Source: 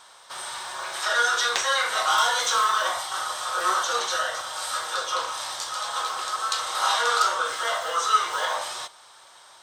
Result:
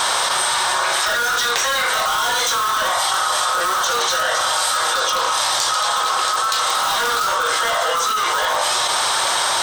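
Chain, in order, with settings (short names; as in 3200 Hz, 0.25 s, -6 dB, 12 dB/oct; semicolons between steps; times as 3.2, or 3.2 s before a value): in parallel at -7 dB: wrapped overs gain 19 dB; on the sum: fast leveller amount 100%; gain -4 dB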